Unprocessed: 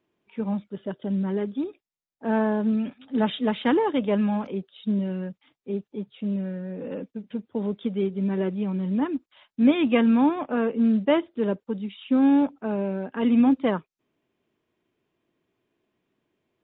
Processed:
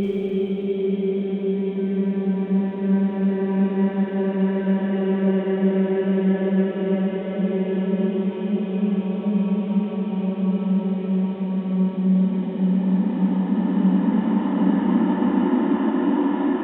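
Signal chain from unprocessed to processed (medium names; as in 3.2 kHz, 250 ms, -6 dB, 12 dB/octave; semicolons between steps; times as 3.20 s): Paulstretch 16×, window 0.50 s, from 8.06 s; band noise 190–630 Hz -48 dBFS; Schroeder reverb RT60 2.5 s, combs from 32 ms, DRR 4.5 dB; trim +2.5 dB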